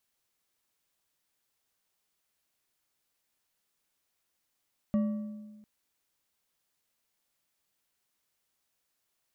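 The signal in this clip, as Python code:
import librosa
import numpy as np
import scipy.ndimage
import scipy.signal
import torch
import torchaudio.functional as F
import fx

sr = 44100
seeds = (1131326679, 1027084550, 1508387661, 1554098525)

y = fx.strike_metal(sr, length_s=0.7, level_db=-22.5, body='bar', hz=212.0, decay_s=1.41, tilt_db=11.5, modes=5)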